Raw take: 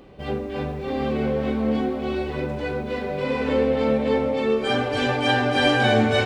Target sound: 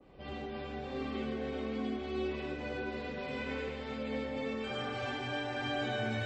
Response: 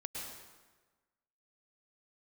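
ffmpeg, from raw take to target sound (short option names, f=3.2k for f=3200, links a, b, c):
-filter_complex "[0:a]adynamicequalizer=threshold=0.0158:dfrequency=3700:dqfactor=0.72:tfrequency=3700:tqfactor=0.72:attack=5:release=100:ratio=0.375:range=2.5:mode=cutabove:tftype=bell,acrossover=split=170|1500|3100|6400[a][b][c][d][e];[a]acompressor=threshold=-39dB:ratio=4[f];[b]acompressor=threshold=-31dB:ratio=4[g];[c]acompressor=threshold=-33dB:ratio=4[h];[d]acompressor=threshold=-45dB:ratio=4[i];[e]acompressor=threshold=-57dB:ratio=4[j];[f][g][h][i][j]amix=inputs=5:normalize=0,asplit=3[k][l][m];[k]afade=t=out:st=1.01:d=0.02[n];[l]equalizer=f=270:w=4.8:g=4.5,afade=t=in:st=1.01:d=0.02,afade=t=out:st=3.14:d=0.02[o];[m]afade=t=in:st=3.14:d=0.02[p];[n][o][p]amix=inputs=3:normalize=0,bandreject=f=50:t=h:w=6,bandreject=f=100:t=h:w=6,bandreject=f=150:t=h:w=6,bandreject=f=200:t=h:w=6,bandreject=f=250:t=h:w=6,bandreject=f=300:t=h:w=6,bandreject=f=350:t=h:w=6,bandreject=f=400:t=h:w=6,bandreject=f=450:t=h:w=6,bandreject=f=500:t=h:w=6[q];[1:a]atrim=start_sample=2205,asetrate=61740,aresample=44100[r];[q][r]afir=irnorm=-1:irlink=0,volume=-3.5dB" -ar 24000 -c:a libmp3lame -b:a 32k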